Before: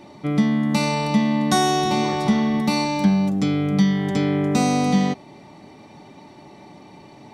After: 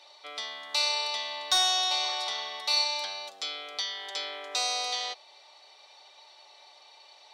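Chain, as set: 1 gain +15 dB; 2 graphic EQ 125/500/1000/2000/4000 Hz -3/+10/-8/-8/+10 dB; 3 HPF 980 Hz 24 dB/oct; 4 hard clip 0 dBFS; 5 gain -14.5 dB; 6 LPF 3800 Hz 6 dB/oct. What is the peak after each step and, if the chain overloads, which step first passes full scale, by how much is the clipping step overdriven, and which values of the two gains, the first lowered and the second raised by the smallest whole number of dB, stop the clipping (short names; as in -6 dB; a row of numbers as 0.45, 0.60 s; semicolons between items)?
+8.0, +9.5, +7.0, 0.0, -14.5, -15.0 dBFS; step 1, 7.0 dB; step 1 +8 dB, step 5 -7.5 dB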